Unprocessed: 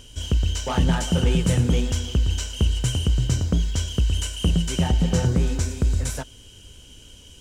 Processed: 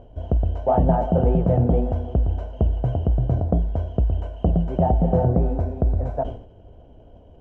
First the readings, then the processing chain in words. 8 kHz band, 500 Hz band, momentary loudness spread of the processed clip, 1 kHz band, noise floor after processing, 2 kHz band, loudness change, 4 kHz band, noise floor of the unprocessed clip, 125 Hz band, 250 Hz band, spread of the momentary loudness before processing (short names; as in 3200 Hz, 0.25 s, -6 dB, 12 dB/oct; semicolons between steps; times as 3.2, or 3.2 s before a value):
under -35 dB, +7.5 dB, 6 LU, +8.0 dB, -47 dBFS, under -10 dB, +1.0 dB, under -25 dB, -47 dBFS, +0.5 dB, +1.0 dB, 5 LU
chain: synth low-pass 690 Hz, resonance Q 6.2; sustainer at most 96 dB/s